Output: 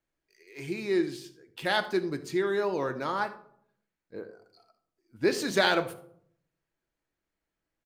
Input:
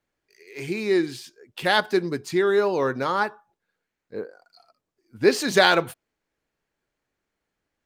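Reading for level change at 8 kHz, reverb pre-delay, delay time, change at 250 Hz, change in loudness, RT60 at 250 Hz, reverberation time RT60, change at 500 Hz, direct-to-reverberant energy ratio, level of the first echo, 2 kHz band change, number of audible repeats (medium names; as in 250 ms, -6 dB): -6.5 dB, 3 ms, 77 ms, -5.0 dB, -6.5 dB, 0.90 s, 0.65 s, -7.0 dB, 8.0 dB, -19.0 dB, -6.5 dB, 1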